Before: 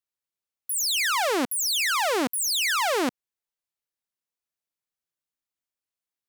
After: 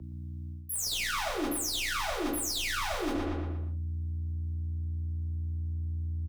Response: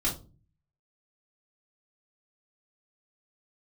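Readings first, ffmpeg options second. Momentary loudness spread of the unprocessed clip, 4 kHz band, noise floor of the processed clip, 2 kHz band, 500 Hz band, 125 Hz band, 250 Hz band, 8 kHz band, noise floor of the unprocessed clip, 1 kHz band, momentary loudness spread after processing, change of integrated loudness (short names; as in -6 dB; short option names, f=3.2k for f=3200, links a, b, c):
6 LU, -7.5 dB, -40 dBFS, -8.0 dB, -8.0 dB, +25.5 dB, -3.0 dB, -7.5 dB, under -85 dBFS, -8.5 dB, 6 LU, -9.5 dB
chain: -filter_complex "[1:a]atrim=start_sample=2205,atrim=end_sample=6615[a];[0:a][a]afir=irnorm=-1:irlink=0,aeval=exprs='val(0)+0.00891*(sin(2*PI*60*n/s)+sin(2*PI*2*60*n/s)/2+sin(2*PI*3*60*n/s)/3+sin(2*PI*4*60*n/s)/4+sin(2*PI*5*60*n/s)/5)':c=same,acrossover=split=370[b][c];[c]aeval=exprs='clip(val(0),-1,0.15)':c=same[d];[b][d]amix=inputs=2:normalize=0,asubboost=boost=6.5:cutoff=54,asplit=2[e][f];[f]adelay=118,lowpass=f=3.7k:p=1,volume=-11dB,asplit=2[g][h];[h]adelay=118,lowpass=f=3.7k:p=1,volume=0.47,asplit=2[i][j];[j]adelay=118,lowpass=f=3.7k:p=1,volume=0.47,asplit=2[k][l];[l]adelay=118,lowpass=f=3.7k:p=1,volume=0.47,asplit=2[m][n];[n]adelay=118,lowpass=f=3.7k:p=1,volume=0.47[o];[e][g][i][k][m][o]amix=inputs=6:normalize=0,afreqshift=22,areverse,acompressor=threshold=-30dB:ratio=12,areverse,volume=1dB"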